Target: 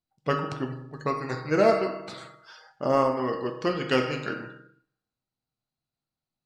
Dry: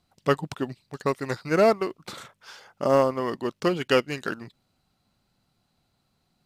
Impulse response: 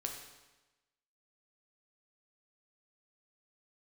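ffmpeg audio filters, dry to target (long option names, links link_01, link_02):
-filter_complex "[1:a]atrim=start_sample=2205,asetrate=48510,aresample=44100[link_01];[0:a][link_01]afir=irnorm=-1:irlink=0,afftdn=noise_reduction=18:noise_floor=-50"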